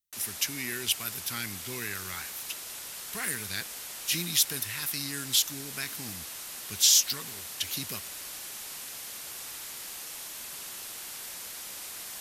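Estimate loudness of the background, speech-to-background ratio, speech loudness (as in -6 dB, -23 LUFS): -38.0 LUFS, 9.5 dB, -28.5 LUFS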